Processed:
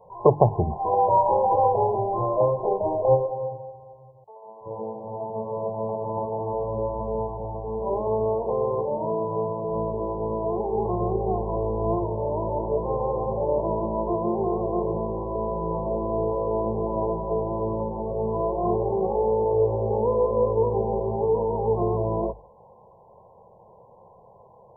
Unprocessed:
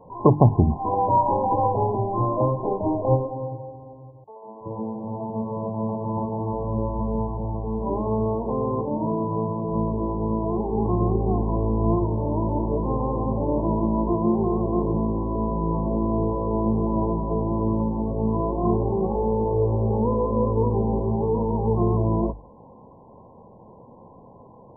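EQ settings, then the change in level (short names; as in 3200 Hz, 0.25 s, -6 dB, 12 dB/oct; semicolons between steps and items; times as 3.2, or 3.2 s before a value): dynamic EQ 370 Hz, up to +7 dB, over -36 dBFS, Q 0.7; low shelf 180 Hz -8 dB; fixed phaser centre 660 Hz, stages 4; 0.0 dB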